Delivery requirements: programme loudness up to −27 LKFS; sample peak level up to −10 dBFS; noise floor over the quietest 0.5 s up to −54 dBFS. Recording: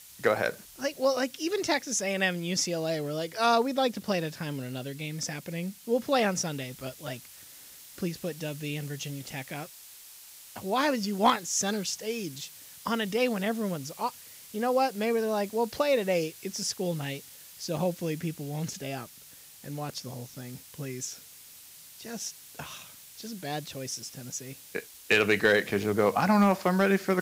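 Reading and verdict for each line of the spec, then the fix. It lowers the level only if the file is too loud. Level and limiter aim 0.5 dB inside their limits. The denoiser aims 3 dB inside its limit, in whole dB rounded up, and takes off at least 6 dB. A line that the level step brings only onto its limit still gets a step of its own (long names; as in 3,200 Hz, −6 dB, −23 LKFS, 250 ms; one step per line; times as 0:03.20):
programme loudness −29.5 LKFS: in spec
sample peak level −12.0 dBFS: in spec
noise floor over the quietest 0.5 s −51 dBFS: out of spec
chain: broadband denoise 6 dB, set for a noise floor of −51 dBFS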